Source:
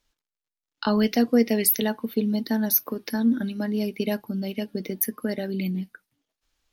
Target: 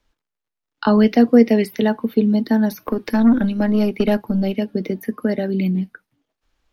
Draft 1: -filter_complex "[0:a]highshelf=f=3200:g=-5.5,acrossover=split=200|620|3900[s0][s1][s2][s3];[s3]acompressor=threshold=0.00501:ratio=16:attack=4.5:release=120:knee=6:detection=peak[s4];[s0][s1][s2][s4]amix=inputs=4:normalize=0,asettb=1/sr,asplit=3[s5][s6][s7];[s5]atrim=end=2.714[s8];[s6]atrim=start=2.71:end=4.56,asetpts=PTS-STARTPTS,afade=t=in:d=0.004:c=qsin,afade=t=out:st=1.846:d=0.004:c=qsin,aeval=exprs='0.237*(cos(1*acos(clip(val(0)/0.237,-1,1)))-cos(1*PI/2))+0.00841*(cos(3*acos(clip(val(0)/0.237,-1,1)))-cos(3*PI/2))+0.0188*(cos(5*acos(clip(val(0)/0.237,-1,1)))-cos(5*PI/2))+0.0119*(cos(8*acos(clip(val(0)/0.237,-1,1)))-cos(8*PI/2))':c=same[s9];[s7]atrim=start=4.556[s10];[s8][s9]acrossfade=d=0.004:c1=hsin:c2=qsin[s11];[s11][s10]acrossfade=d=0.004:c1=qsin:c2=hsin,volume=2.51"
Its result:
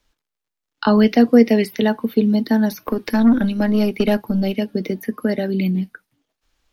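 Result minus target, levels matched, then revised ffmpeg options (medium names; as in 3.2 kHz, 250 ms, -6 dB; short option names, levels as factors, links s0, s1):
4 kHz band +3.0 dB
-filter_complex "[0:a]highshelf=f=3200:g=-13,acrossover=split=200|620|3900[s0][s1][s2][s3];[s3]acompressor=threshold=0.00501:ratio=16:attack=4.5:release=120:knee=6:detection=peak[s4];[s0][s1][s2][s4]amix=inputs=4:normalize=0,asettb=1/sr,asplit=3[s5][s6][s7];[s5]atrim=end=2.714[s8];[s6]atrim=start=2.71:end=4.56,asetpts=PTS-STARTPTS,afade=t=in:d=0.004:c=qsin,afade=t=out:st=1.846:d=0.004:c=qsin,aeval=exprs='0.237*(cos(1*acos(clip(val(0)/0.237,-1,1)))-cos(1*PI/2))+0.00841*(cos(3*acos(clip(val(0)/0.237,-1,1)))-cos(3*PI/2))+0.0188*(cos(5*acos(clip(val(0)/0.237,-1,1)))-cos(5*PI/2))+0.0119*(cos(8*acos(clip(val(0)/0.237,-1,1)))-cos(8*PI/2))':c=same[s9];[s7]atrim=start=4.556[s10];[s8][s9]acrossfade=d=0.004:c1=hsin:c2=qsin[s11];[s11][s10]acrossfade=d=0.004:c1=qsin:c2=hsin,volume=2.51"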